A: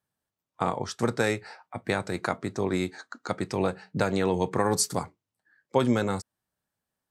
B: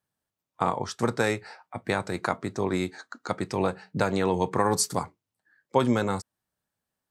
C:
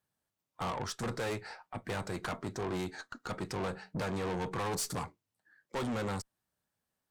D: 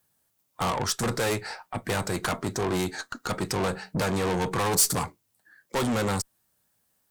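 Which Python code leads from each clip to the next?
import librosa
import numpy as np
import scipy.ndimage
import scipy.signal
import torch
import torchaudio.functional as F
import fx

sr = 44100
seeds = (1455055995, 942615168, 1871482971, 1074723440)

y1 = fx.dynamic_eq(x, sr, hz=1000.0, q=2.3, threshold_db=-40.0, ratio=4.0, max_db=4)
y2 = fx.tube_stage(y1, sr, drive_db=32.0, bias=0.35)
y3 = fx.high_shelf(y2, sr, hz=7000.0, db=11.5)
y3 = y3 * 10.0 ** (8.5 / 20.0)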